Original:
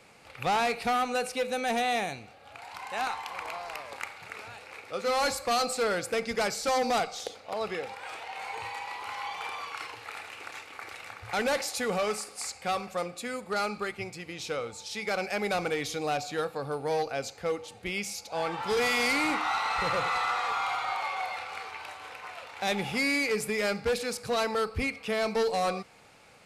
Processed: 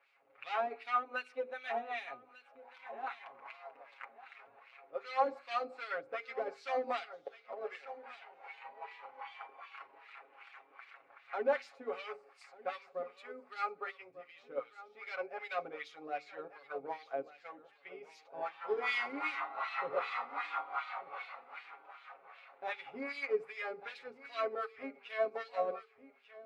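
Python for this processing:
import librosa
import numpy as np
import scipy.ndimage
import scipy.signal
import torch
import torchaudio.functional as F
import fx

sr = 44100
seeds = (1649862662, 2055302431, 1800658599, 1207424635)

y = fx.low_shelf(x, sr, hz=200.0, db=-9.0)
y = fx.notch(y, sr, hz=890.0, q=12.0)
y = y + 0.84 * np.pad(y, (int(7.3 * sr / 1000.0), 0))[:len(y)]
y = fx.echo_feedback(y, sr, ms=1195, feedback_pct=26, wet_db=-11.5)
y = fx.filter_lfo_bandpass(y, sr, shape='sine', hz=2.6, low_hz=300.0, high_hz=3500.0, q=1.2)
y = fx.bass_treble(y, sr, bass_db=-6, treble_db=-15)
y = fx.hum_notches(y, sr, base_hz=50, count=9)
y = fx.upward_expand(y, sr, threshold_db=-44.0, expansion=1.5)
y = F.gain(torch.from_numpy(y), -1.0).numpy()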